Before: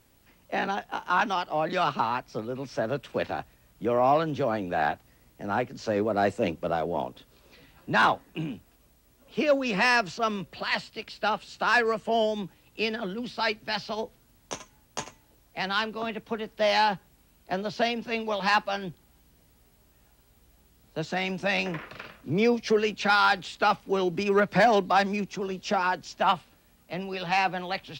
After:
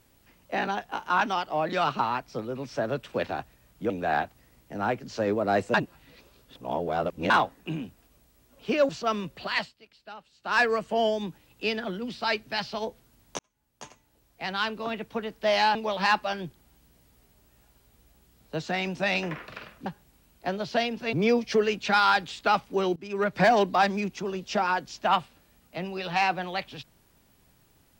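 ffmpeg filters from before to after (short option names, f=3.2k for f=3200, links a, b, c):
-filter_complex "[0:a]asplit=12[a][b][c][d][e][f][g][h][i][j][k][l];[a]atrim=end=3.902[m];[b]atrim=start=4.588:end=6.432[n];[c]atrim=start=6.428:end=7.992,asetpts=PTS-STARTPTS,areverse[o];[d]atrim=start=7.988:end=9.582[p];[e]atrim=start=10.048:end=10.89,asetpts=PTS-STARTPTS,afade=t=out:st=0.692:d=0.15:silence=0.141254[q];[f]atrim=start=10.89:end=11.58,asetpts=PTS-STARTPTS,volume=-17dB[r];[g]atrim=start=11.58:end=14.55,asetpts=PTS-STARTPTS,afade=t=in:d=0.15:silence=0.141254,afade=t=out:st=2.966:d=0.004:c=hsin[s];[h]atrim=start=14.55:end=16.912,asetpts=PTS-STARTPTS,afade=t=in:d=1.4[t];[i]atrim=start=18.178:end=22.292[u];[j]atrim=start=16.908:end=18.182[v];[k]atrim=start=22.288:end=24.12,asetpts=PTS-STARTPTS,afade=t=out:st=1.828:d=0.004:c=hsin:silence=0.0749894[w];[l]atrim=start=24.12,asetpts=PTS-STARTPTS,afade=t=in:d=0.46:silence=0.0749894[x];[m][n]acrossfade=d=0.004:c1=hsin:c2=hsin[y];[y][o]acrossfade=d=0.004:c1=hsin:c2=hsin[z];[z][p]acrossfade=d=0.004:c1=hsin:c2=hsin[aa];[q][r][s][t]concat=n=4:v=0:a=1[ab];[aa][ab]acrossfade=d=0.004:c1=hsin:c2=hsin[ac];[ac][u]acrossfade=d=0.004:c1=hsin:c2=hsin[ad];[ad][v]acrossfade=d=0.004:c1=hsin:c2=hsin[ae];[w][x]concat=n=2:v=0:a=1[af];[ae][af]acrossfade=d=0.004:c1=hsin:c2=hsin"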